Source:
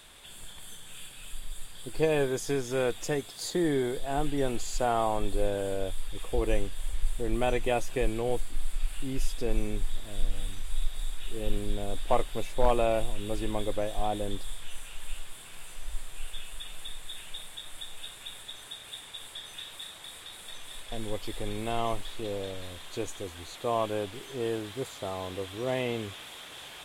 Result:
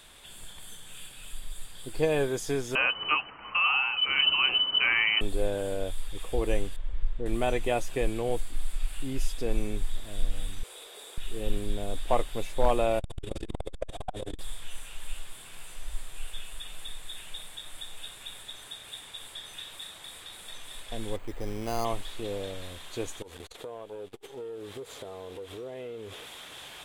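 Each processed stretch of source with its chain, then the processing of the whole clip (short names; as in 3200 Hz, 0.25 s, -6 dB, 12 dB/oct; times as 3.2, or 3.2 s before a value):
2.75–5.21 bell 1900 Hz +14 dB 0.74 oct + inverted band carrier 3000 Hz
6.76–7.26 tape spacing loss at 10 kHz 32 dB + notch 760 Hz, Q 9.6
10.63–11.18 resonant high-pass 440 Hz, resonance Q 4.8 + notch 1900 Hz, Q 23
12.99–14.39 LPF 9000 Hz + doubler 27 ms -2.5 dB + core saturation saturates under 220 Hz
21.16–21.85 careless resampling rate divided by 8×, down filtered, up hold + mismatched tape noise reduction decoder only
23.22–26.26 bell 450 Hz +12.5 dB 0.55 oct + compressor 16:1, threshold -35 dBFS + core saturation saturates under 480 Hz
whole clip: dry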